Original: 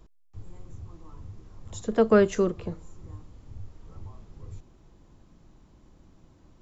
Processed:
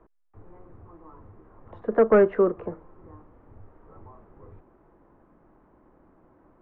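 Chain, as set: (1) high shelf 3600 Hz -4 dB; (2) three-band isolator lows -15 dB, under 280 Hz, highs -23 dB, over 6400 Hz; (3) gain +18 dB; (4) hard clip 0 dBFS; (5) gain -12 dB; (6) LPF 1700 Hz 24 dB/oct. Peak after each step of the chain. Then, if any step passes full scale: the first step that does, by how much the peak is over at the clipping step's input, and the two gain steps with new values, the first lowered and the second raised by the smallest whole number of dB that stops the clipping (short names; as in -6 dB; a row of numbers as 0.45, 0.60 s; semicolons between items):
-8.5, -11.5, +6.5, 0.0, -12.0, -10.5 dBFS; step 3, 6.5 dB; step 3 +11 dB, step 5 -5 dB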